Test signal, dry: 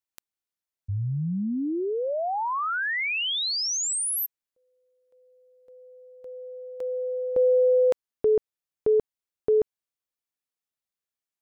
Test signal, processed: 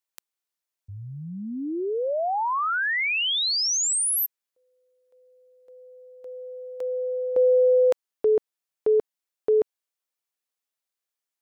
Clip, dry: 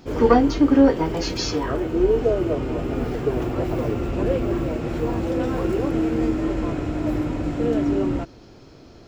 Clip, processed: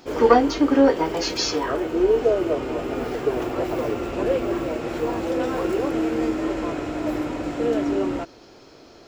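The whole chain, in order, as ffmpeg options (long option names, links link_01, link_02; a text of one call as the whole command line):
ffmpeg -i in.wav -af "bass=frequency=250:gain=-13,treble=frequency=4000:gain=1,volume=2.5dB" out.wav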